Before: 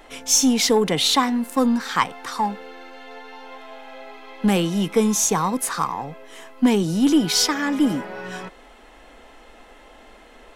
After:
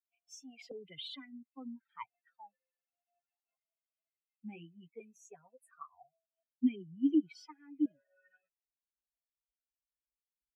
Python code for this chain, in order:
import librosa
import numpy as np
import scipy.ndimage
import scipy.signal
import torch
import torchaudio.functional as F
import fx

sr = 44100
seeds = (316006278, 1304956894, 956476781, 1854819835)

y = fx.bin_expand(x, sr, power=3.0)
y = fx.chorus_voices(y, sr, voices=4, hz=1.4, base_ms=10, depth_ms=3.0, mix_pct=30, at=(3.55, 5.94))
y = fx.vowel_held(y, sr, hz=1.4)
y = F.gain(torch.from_numpy(y), -5.0).numpy()